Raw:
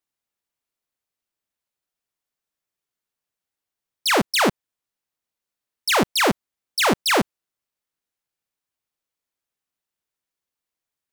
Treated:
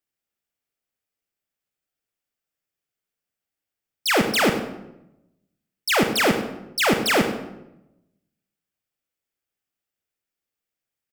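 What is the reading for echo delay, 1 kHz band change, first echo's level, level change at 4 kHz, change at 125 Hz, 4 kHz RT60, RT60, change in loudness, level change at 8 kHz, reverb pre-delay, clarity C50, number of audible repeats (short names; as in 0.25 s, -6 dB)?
0.1 s, -2.5 dB, -13.5 dB, -1.5 dB, +1.0 dB, 0.60 s, 0.90 s, -0.5 dB, -2.0 dB, 38 ms, 7.0 dB, 1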